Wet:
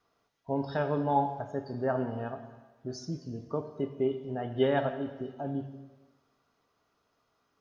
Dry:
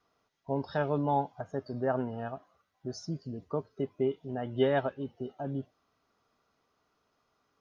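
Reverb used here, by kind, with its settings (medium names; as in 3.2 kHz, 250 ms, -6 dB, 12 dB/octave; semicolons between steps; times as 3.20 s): plate-style reverb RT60 1.3 s, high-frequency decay 0.95×, DRR 7.5 dB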